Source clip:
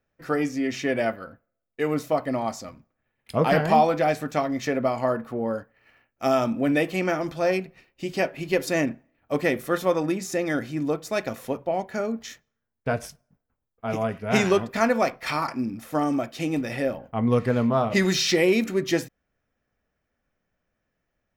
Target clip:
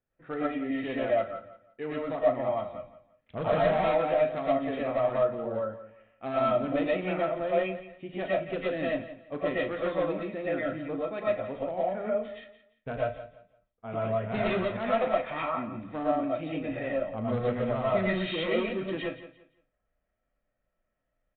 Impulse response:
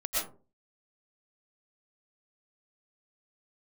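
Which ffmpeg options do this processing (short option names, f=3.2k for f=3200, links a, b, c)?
-filter_complex "[0:a]highshelf=f=2.4k:g=-7,aresample=8000,asoftclip=type=hard:threshold=-18dB,aresample=44100,asplit=2[a][b];[b]adelay=37,volume=-10.5dB[c];[a][c]amix=inputs=2:normalize=0,aecho=1:1:172|344|516:0.2|0.0519|0.0135[d];[1:a]atrim=start_sample=2205,afade=t=out:st=0.18:d=0.01,atrim=end_sample=8379[e];[d][e]afir=irnorm=-1:irlink=0,volume=-8.5dB"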